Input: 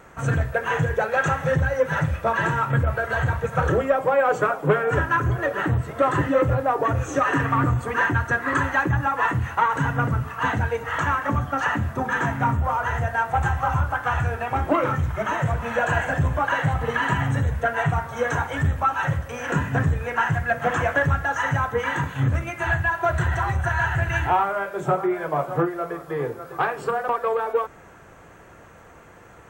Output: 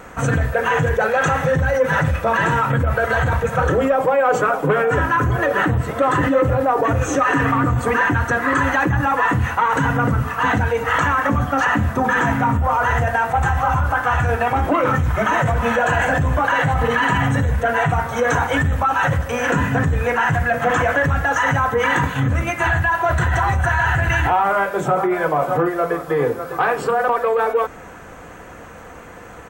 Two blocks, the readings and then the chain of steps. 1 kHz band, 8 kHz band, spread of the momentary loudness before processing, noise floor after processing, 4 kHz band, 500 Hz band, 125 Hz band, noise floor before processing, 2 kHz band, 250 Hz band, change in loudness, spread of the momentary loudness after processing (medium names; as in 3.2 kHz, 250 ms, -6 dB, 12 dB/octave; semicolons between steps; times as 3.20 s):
+5.5 dB, +7.5 dB, 4 LU, -38 dBFS, +6.5 dB, +5.0 dB, +3.5 dB, -47 dBFS, +5.0 dB, +6.0 dB, +5.0 dB, 2 LU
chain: comb 4 ms, depth 31%; in parallel at +2 dB: compressor with a negative ratio -26 dBFS, ratio -1